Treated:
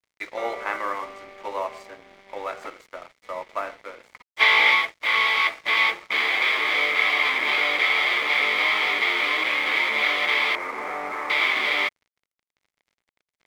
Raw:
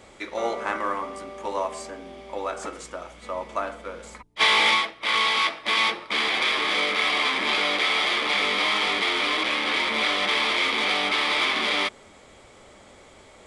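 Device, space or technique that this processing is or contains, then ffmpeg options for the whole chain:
pocket radio on a weak battery: -filter_complex "[0:a]asettb=1/sr,asplit=3[s0][s1][s2];[s0]atrim=end=10.554[s3];[s1]atrim=start=10.55:end=11.3,asetpts=PTS-STARTPTS,afade=t=in:d=0.004:c=qsin,afade=t=out:st=0.746:d=0.004:c=qsin,lowpass=f=1500:w=0.5412,lowpass=f=1500:w=1.3066[s4];[s2]atrim=start=11.296[s5];[s3][s4]acrossfade=d=0.004:c1=hsin:c2=qsin[s6];[s6][s5]acrossfade=d=0.004:c1=qsin:c2=hsin,highpass=370,lowpass=3800,aeval=exprs='sgn(val(0))*max(abs(val(0))-0.00631,0)':c=same,equalizer=f=2100:t=o:w=0.29:g=7.5"

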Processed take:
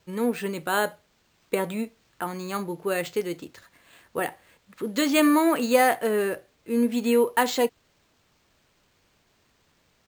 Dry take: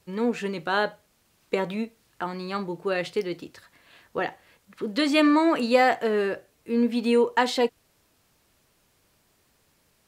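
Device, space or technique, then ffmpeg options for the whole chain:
crushed at another speed: -af "asetrate=35280,aresample=44100,acrusher=samples=5:mix=1:aa=0.000001,asetrate=55125,aresample=44100"

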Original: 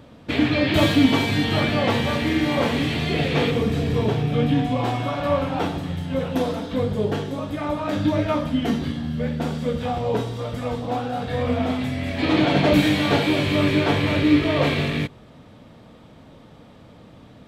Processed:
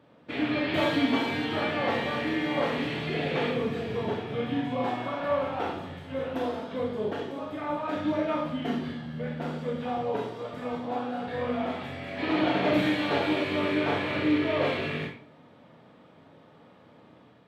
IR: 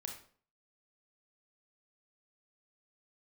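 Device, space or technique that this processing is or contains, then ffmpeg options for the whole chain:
far laptop microphone: -filter_complex "[0:a]bass=f=250:g=-7,treble=f=4000:g=-11[s0];[1:a]atrim=start_sample=2205[s1];[s0][s1]afir=irnorm=-1:irlink=0,highpass=110,dynaudnorm=f=160:g=5:m=1.5,volume=0.531"

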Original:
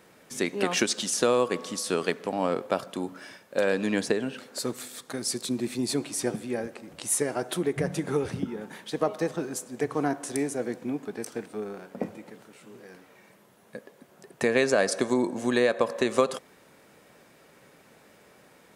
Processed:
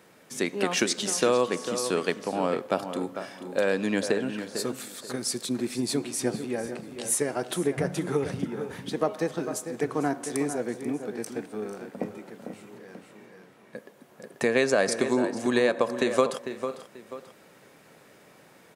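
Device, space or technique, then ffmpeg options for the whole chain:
ducked delay: -filter_complex "[0:a]highpass=73,asettb=1/sr,asplit=3[s0][s1][s2];[s0]atrim=end=12.774[s3];[s1]atrim=start=12.77:end=13.76,asetpts=PTS-STARTPTS,afade=t=in:d=0.004:c=qsin,afade=t=out:st=0.986:d=0.004:c=qsin,highshelf=f=6900:g=-10[s4];[s2]atrim=start=13.756[s5];[s3][s4]acrossfade=d=0.004:c1=hsin:c2=qsin[s6];[s6][s5]acrossfade=d=0.004:c1=qsin:c2=hsin,asplit=2[s7][s8];[s8]adelay=449,volume=0.355,highshelf=f=4000:g=-10.1[s9];[s7][s9]amix=inputs=2:normalize=0,asplit=3[s10][s11][s12];[s11]adelay=487,volume=0.562[s13];[s12]apad=whole_len=868395[s14];[s13][s14]sidechaincompress=threshold=0.00708:ratio=5:attack=50:release=544[s15];[s10][s15]amix=inputs=2:normalize=0"

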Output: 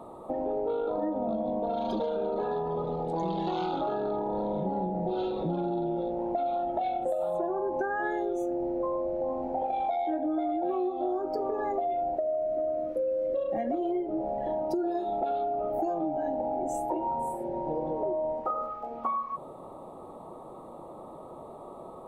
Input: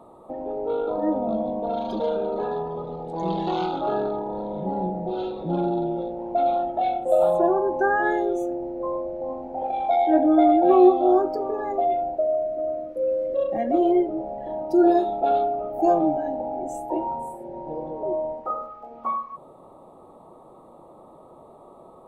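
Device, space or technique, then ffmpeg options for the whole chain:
serial compression, peaks first: -af "acompressor=threshold=0.0501:ratio=6,acompressor=threshold=0.0251:ratio=2.5,volume=1.5"

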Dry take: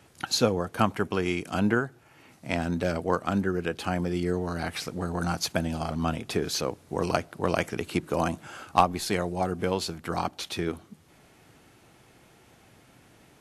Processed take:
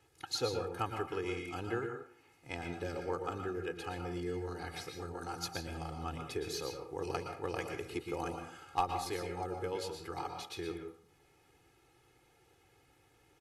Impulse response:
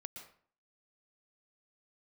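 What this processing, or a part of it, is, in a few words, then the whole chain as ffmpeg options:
microphone above a desk: -filter_complex "[0:a]aecho=1:1:2.4:0.86[s0];[1:a]atrim=start_sample=2205[s1];[s0][s1]afir=irnorm=-1:irlink=0,volume=0.376"

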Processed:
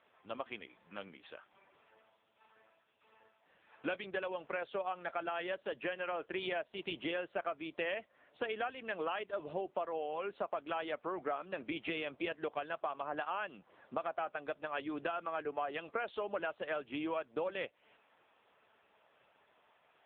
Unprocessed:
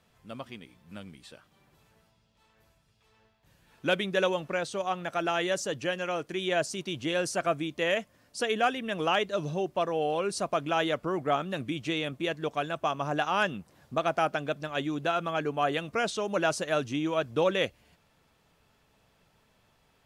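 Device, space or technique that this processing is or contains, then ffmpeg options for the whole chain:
voicemail: -af "highpass=430,lowpass=3000,acompressor=threshold=0.0126:ratio=8,volume=1.68" -ar 8000 -c:a libopencore_amrnb -b:a 6700

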